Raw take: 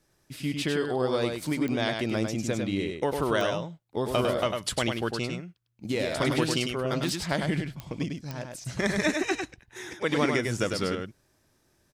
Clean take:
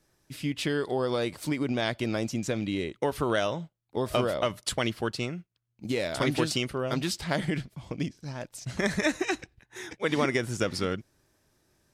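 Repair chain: de-click; inverse comb 101 ms -5 dB

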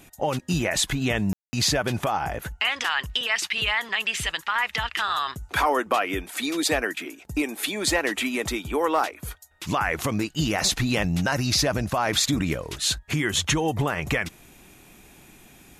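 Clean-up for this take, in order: clip repair -11.5 dBFS; room tone fill 1.33–1.53 s

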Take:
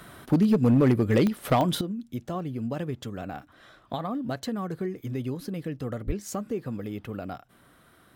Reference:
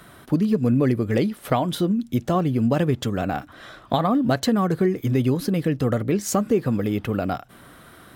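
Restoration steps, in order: clip repair -14.5 dBFS; de-click; 1.81 s: gain correction +11 dB; 6.06–6.18 s: high-pass 140 Hz 24 dB/octave

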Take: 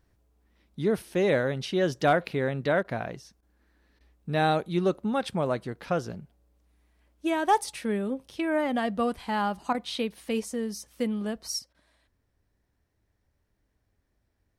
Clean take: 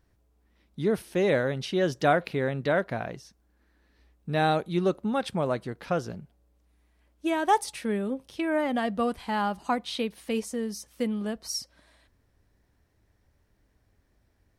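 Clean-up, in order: clip repair -12.5 dBFS; interpolate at 2.83/3.41/3.99/9.73/11.73 s, 14 ms; gain correction +6.5 dB, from 11.59 s

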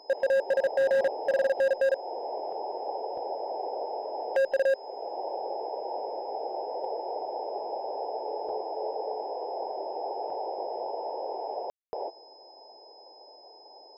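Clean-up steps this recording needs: clip repair -21 dBFS; band-stop 5.1 kHz, Q 30; room tone fill 11.70–11.93 s

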